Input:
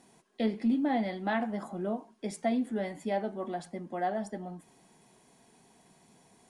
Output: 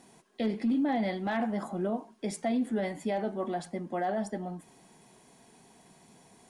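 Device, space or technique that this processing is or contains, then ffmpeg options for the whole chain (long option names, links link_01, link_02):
clipper into limiter: -af "asoftclip=type=hard:threshold=-21dB,alimiter=level_in=2dB:limit=-24dB:level=0:latency=1:release=12,volume=-2dB,volume=3.5dB"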